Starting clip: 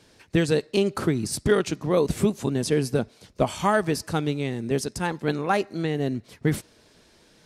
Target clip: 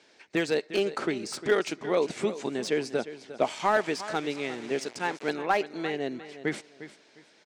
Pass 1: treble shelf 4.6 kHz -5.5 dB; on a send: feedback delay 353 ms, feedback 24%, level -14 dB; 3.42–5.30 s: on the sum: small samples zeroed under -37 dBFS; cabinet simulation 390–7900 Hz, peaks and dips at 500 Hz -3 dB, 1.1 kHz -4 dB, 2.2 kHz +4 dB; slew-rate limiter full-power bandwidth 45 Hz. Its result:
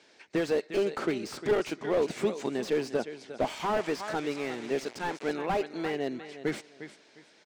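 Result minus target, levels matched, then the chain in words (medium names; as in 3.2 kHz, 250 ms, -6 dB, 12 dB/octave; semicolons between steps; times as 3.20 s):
slew-rate limiter: distortion +15 dB
treble shelf 4.6 kHz -5.5 dB; on a send: feedback delay 353 ms, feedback 24%, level -14 dB; 3.42–5.30 s: on the sum: small samples zeroed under -37 dBFS; cabinet simulation 390–7900 Hz, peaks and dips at 500 Hz -3 dB, 1.1 kHz -4 dB, 2.2 kHz +4 dB; slew-rate limiter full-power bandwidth 156 Hz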